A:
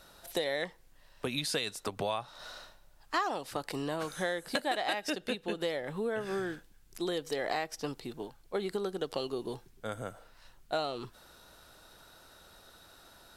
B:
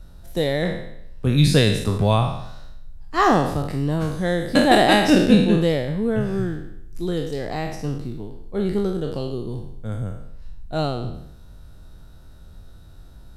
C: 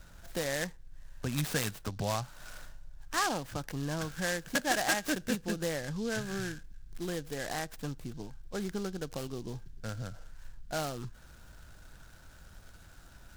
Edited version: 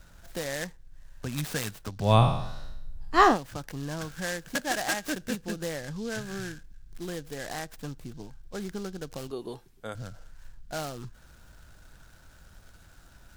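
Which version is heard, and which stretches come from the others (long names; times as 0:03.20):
C
0:02.09–0:03.30: punch in from B, crossfade 0.16 s
0:09.31–0:09.95: punch in from A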